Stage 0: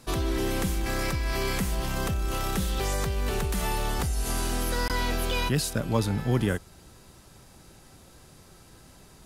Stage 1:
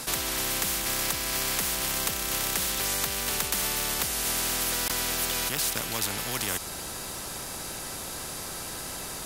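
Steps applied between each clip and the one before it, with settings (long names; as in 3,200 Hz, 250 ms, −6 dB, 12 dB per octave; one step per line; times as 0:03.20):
high-shelf EQ 9,600 Hz +7.5 dB
every bin compressed towards the loudest bin 4 to 1
level +2 dB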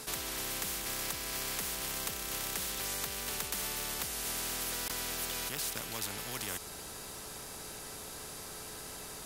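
steady tone 430 Hz −48 dBFS
level −8.5 dB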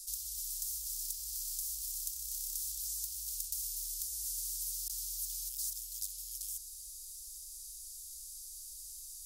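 inverse Chebyshev band-stop filter 190–1,400 Hz, stop band 70 dB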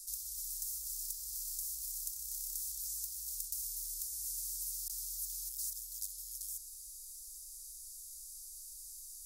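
phaser with its sweep stopped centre 490 Hz, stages 8
level −1 dB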